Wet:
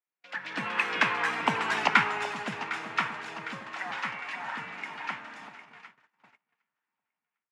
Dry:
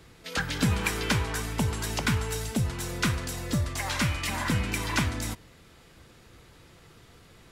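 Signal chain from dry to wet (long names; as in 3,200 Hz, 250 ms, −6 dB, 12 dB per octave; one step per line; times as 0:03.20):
source passing by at 0:01.69, 30 m/s, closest 15 metres
on a send: delay that swaps between a low-pass and a high-pass 378 ms, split 1,100 Hz, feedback 75%, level −11 dB
on the sum: noise gate −53 dBFS, range −30 dB
Bessel high-pass filter 260 Hz, order 8
automatic gain control gain up to 8.5 dB
low-pass filter 4,400 Hz 12 dB per octave
flat-topped bell 1,400 Hz +10.5 dB 2.3 octaves
level −8 dB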